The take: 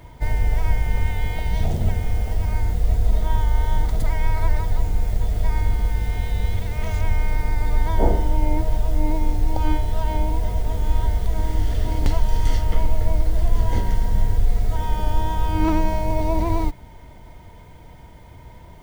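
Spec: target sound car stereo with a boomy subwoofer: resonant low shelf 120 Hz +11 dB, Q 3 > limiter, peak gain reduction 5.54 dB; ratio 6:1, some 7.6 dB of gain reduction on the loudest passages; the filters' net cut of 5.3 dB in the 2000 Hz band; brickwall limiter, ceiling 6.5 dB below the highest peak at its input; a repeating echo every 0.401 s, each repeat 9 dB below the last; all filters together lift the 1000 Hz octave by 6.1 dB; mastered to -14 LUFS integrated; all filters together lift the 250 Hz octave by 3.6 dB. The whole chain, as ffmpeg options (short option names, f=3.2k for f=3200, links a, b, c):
-af "equalizer=f=250:t=o:g=8,equalizer=f=1k:t=o:g=8,equalizer=f=2k:t=o:g=-9,acompressor=threshold=-19dB:ratio=6,alimiter=limit=-17.5dB:level=0:latency=1,lowshelf=f=120:t=q:w=3:g=11,aecho=1:1:401|802|1203|1604:0.355|0.124|0.0435|0.0152,volume=5dB,alimiter=limit=-1.5dB:level=0:latency=1"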